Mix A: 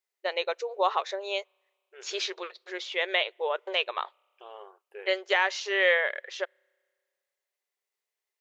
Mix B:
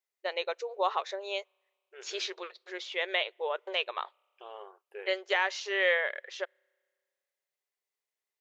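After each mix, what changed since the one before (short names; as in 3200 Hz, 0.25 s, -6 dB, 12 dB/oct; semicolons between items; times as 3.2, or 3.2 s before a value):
first voice -3.5 dB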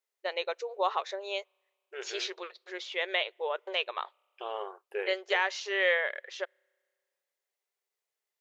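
second voice +9.0 dB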